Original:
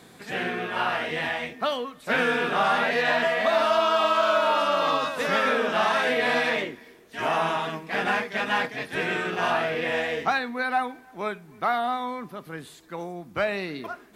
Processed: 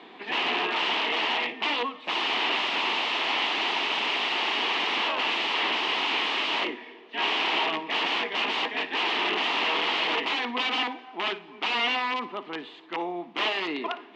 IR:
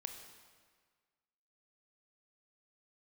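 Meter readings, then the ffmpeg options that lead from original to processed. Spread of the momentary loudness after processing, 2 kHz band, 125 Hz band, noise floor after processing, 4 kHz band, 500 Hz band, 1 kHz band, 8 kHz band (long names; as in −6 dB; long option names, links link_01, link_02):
7 LU, −1.0 dB, below −10 dB, −47 dBFS, +7.5 dB, −9.0 dB, −3.5 dB, −3.0 dB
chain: -filter_complex "[0:a]aeval=exprs='(mod(16.8*val(0)+1,2)-1)/16.8':channel_layout=same,highpass=frequency=280:width=0.5412,highpass=frequency=280:width=1.3066,equalizer=frequency=540:width_type=q:width=4:gain=-9,equalizer=frequency=930:width_type=q:width=4:gain=5,equalizer=frequency=1500:width_type=q:width=4:gain=-9,equalizer=frequency=2900:width_type=q:width=4:gain=6,lowpass=frequency=3300:width=0.5412,lowpass=frequency=3300:width=1.3066,asplit=2[link_01][link_02];[1:a]atrim=start_sample=2205,adelay=57[link_03];[link_02][link_03]afir=irnorm=-1:irlink=0,volume=-13dB[link_04];[link_01][link_04]amix=inputs=2:normalize=0,volume=6dB"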